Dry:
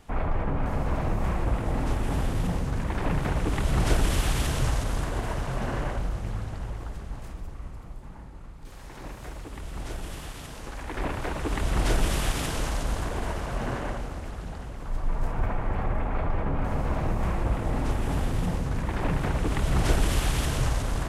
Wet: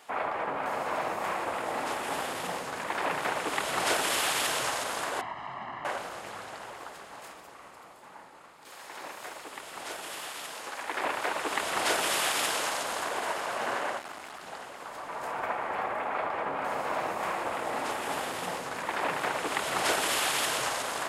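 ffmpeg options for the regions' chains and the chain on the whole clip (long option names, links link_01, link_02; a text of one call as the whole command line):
ffmpeg -i in.wav -filter_complex "[0:a]asettb=1/sr,asplit=3[link_01][link_02][link_03];[link_01]atrim=end=5.214[link_04];[link_02]atrim=start=5.21:end=5.85,asetpts=PTS-STARTPTS,afade=type=in:duration=0.004:curve=qsin,afade=type=out:start_time=0.636:duration=0.004:curve=qsin,lowpass=2500,acrossover=split=83|180[link_05][link_06][link_07];[link_05]acompressor=threshold=-35dB:ratio=4[link_08];[link_06]acompressor=threshold=-38dB:ratio=4[link_09];[link_07]acompressor=threshold=-42dB:ratio=4[link_10];[link_08][link_09][link_10]amix=inputs=3:normalize=0,aecho=1:1:1:0.83,atrim=end_sample=28224[link_11];[link_03]atrim=start=5.846[link_12];[link_04][link_11]acrossfade=duration=0.004:curve1=hsin:curve2=qsin[link_13];[link_13][link_12]acrossfade=duration=0.004:curve1=qsin:curve2=hsin,asettb=1/sr,asplit=3[link_14][link_15][link_16];[link_14]atrim=end=13.994[link_17];[link_15]atrim=start=13.99:end=14.46,asetpts=PTS-STARTPTS,afade=type=in:duration=0.004:curve=qsin,afade=type=out:start_time=0.466:duration=0.004:curve=qsin,equalizer=frequency=510:width=5.3:gain=-14,asoftclip=type=hard:threshold=-33.5dB[link_18];[link_16]atrim=start=14.456[link_19];[link_17][link_18]acrossfade=duration=0.004:curve1=hsin:curve2=qsin[link_20];[link_20][link_19]acrossfade=duration=0.004:curve1=qsin:curve2=hsin,highpass=620,bandreject=frequency=5900:width=17,volume=5dB" out.wav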